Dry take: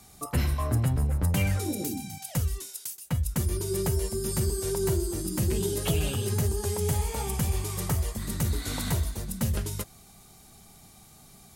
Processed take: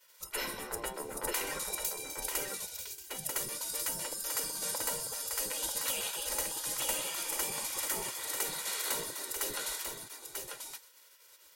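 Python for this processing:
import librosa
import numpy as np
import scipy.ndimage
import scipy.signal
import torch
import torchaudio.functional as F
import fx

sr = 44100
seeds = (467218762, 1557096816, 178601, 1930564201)

y = x + 10.0 ** (-5.0 / 20.0) * np.pad(x, (int(941 * sr / 1000.0), 0))[:len(x)]
y = fx.spec_gate(y, sr, threshold_db=-20, keep='weak')
y = y + 0.49 * np.pad(y, (int(2.1 * sr / 1000.0), 0))[:len(y)]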